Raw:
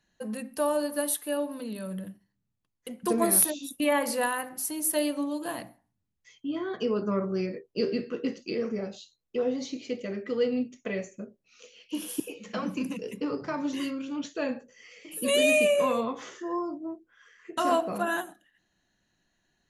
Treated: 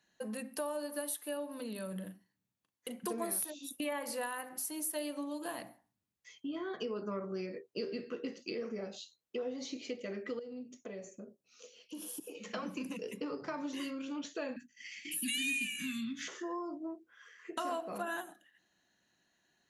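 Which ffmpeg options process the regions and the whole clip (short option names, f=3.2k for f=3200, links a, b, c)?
-filter_complex "[0:a]asettb=1/sr,asplit=3[a][b][c];[a]atrim=end=1.924[d];[b]atrim=start=1.92:end=3.12,asetpts=PTS-STARTPTS,afade=t=in:d=0.004:c=qsin,afade=t=out:st=1.196:d=0.004:c=qsin,highpass=49,bandreject=f=5.2k:w=22,asplit=2[e][f];[f]adelay=38,volume=-10dB[g];[e][g]amix=inputs=2:normalize=0,atrim=end_sample=52920[h];[c]atrim=start=3.116[i];[d][h]acrossfade=d=0.004:c1=hsin:c2=qsin[j];[j][i]acrossfade=d=0.004:c1=qsin:c2=hsin,asettb=1/sr,asplit=3[k][l][m];[k]atrim=end=10.394[n];[l]atrim=start=10.39:end=12.35,asetpts=PTS-STARTPTS,afade=t=in:d=0.004:c=qsin,afade=t=out:st=1.956:d=0.004:c=qsin,highpass=49,equalizer=f=2.2k:t=o:w=1.4:g=-9.5,acompressor=threshold=-41dB:ratio=3:attack=3.2:release=140:knee=1:detection=peak[o];[m]atrim=start=12.346[p];[n][o]acrossfade=d=0.004:c1=hsin:c2=qsin[q];[q][p]acrossfade=d=0.004:c1=qsin:c2=hsin,asettb=1/sr,asplit=3[r][s][t];[r]atrim=end=14.564[u];[s]atrim=start=14.56:end=16.28,asetpts=PTS-STARTPTS,afade=t=in:d=0.004:c=qsin,afade=t=out:st=1.716:d=0.004:c=qsin,agate=range=-33dB:threshold=-49dB:ratio=3:release=100:detection=peak,acontrast=72,asuperstop=centerf=680:order=12:qfactor=0.53[v];[t]atrim=start=16.276[w];[u][v]acrossfade=d=0.004:c1=hsin:c2=qsin[x];[x][w]acrossfade=d=0.004:c1=qsin:c2=hsin,highpass=f=270:p=1,acompressor=threshold=-38dB:ratio=3"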